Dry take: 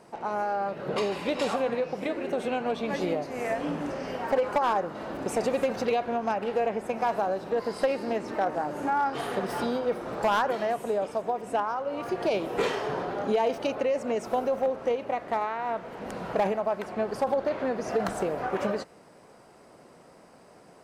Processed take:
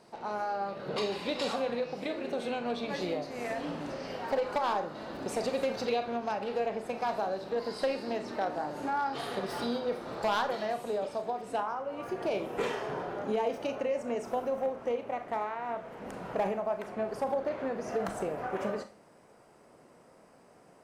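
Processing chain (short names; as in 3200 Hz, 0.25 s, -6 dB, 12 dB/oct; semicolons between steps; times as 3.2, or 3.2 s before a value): bell 4200 Hz +8.5 dB 0.66 oct, from 11.58 s -3.5 dB; Schroeder reverb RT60 0.3 s, combs from 26 ms, DRR 8.5 dB; gain -5.5 dB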